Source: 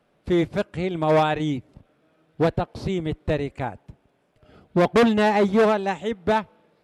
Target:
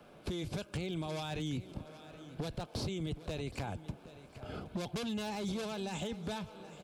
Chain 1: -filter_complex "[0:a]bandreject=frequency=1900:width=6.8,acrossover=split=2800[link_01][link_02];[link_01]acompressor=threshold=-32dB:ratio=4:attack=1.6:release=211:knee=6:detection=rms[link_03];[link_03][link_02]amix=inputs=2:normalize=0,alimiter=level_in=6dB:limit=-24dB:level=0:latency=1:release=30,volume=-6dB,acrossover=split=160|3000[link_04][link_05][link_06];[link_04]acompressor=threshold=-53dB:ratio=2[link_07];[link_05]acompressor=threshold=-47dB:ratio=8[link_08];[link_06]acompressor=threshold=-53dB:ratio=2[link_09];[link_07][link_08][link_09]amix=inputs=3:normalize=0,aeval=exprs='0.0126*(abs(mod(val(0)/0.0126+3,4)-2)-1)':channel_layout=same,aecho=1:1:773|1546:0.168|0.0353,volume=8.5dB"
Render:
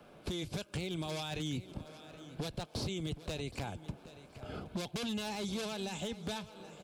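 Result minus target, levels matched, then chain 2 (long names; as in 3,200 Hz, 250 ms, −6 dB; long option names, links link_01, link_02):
downward compressor: peak gain reduction +8.5 dB
-filter_complex "[0:a]bandreject=frequency=1900:width=6.8,acrossover=split=2800[link_01][link_02];[link_01]acompressor=threshold=-20.5dB:ratio=4:attack=1.6:release=211:knee=6:detection=rms[link_03];[link_03][link_02]amix=inputs=2:normalize=0,alimiter=level_in=6dB:limit=-24dB:level=0:latency=1:release=30,volume=-6dB,acrossover=split=160|3000[link_04][link_05][link_06];[link_04]acompressor=threshold=-53dB:ratio=2[link_07];[link_05]acompressor=threshold=-47dB:ratio=8[link_08];[link_06]acompressor=threshold=-53dB:ratio=2[link_09];[link_07][link_08][link_09]amix=inputs=3:normalize=0,aeval=exprs='0.0126*(abs(mod(val(0)/0.0126+3,4)-2)-1)':channel_layout=same,aecho=1:1:773|1546:0.168|0.0353,volume=8.5dB"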